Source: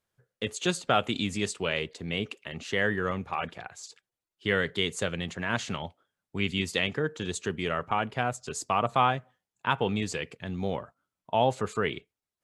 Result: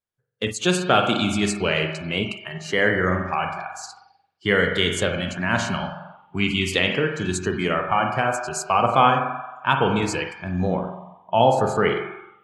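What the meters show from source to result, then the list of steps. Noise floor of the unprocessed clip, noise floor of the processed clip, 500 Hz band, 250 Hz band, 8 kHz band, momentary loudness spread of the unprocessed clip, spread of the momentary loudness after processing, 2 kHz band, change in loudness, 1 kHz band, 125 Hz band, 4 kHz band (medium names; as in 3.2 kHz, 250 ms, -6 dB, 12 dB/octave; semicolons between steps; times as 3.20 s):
under -85 dBFS, -63 dBFS, +8.0 dB, +8.0 dB, +6.5 dB, 10 LU, 11 LU, +8.0 dB, +8.0 dB, +8.5 dB, +7.5 dB, +7.0 dB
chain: spring tank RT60 1.3 s, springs 44 ms, chirp 55 ms, DRR 3 dB; spectral noise reduction 17 dB; trim +6.5 dB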